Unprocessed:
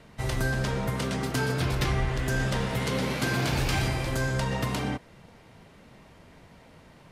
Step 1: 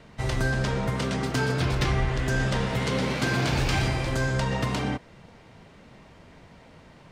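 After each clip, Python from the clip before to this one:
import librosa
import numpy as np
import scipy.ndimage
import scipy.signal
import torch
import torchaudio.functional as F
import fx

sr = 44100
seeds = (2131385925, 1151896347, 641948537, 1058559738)

y = fx.peak_eq(x, sr, hz=12000.0, db=-13.5, octaves=0.48)
y = y * librosa.db_to_amplitude(2.0)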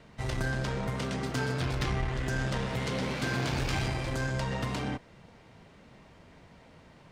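y = fx.diode_clip(x, sr, knee_db=-22.5)
y = y * librosa.db_to_amplitude(-4.0)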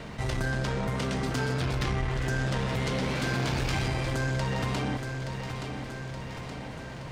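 y = fx.echo_feedback(x, sr, ms=873, feedback_pct=44, wet_db=-13.0)
y = fx.env_flatten(y, sr, amount_pct=50)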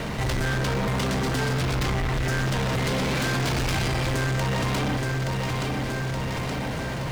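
y = fx.leveller(x, sr, passes=5)
y = fx.quant_dither(y, sr, seeds[0], bits=8, dither='none')
y = y * librosa.db_to_amplitude(-7.0)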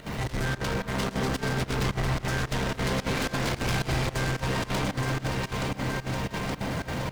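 y = x + 0.5 * 10.0 ** (-36.0 / 20.0) * np.sign(x)
y = fx.echo_alternate(y, sr, ms=347, hz=1600.0, feedback_pct=75, wet_db=-4)
y = fx.volume_shaper(y, sr, bpm=110, per_beat=2, depth_db=-17, release_ms=61.0, shape='slow start')
y = y * librosa.db_to_amplitude(-4.5)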